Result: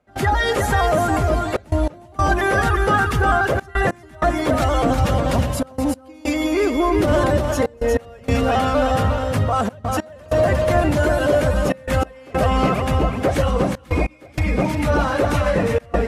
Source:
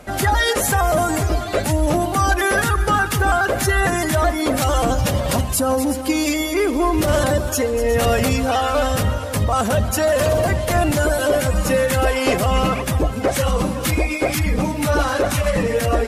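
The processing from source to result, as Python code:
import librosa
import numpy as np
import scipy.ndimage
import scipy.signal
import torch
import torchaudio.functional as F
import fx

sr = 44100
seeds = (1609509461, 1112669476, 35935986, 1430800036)

y = scipy.signal.sosfilt(scipy.signal.butter(2, 46.0, 'highpass', fs=sr, output='sos'), x)
y = y + 10.0 ** (-5.0 / 20.0) * np.pad(y, (int(358 * sr / 1000.0), 0))[:len(y)]
y = fx.step_gate(y, sr, bpm=96, pattern='.xxxxxxxxx.x.', floor_db=-24.0, edge_ms=4.5)
y = fx.lowpass(y, sr, hz=2400.0, slope=6)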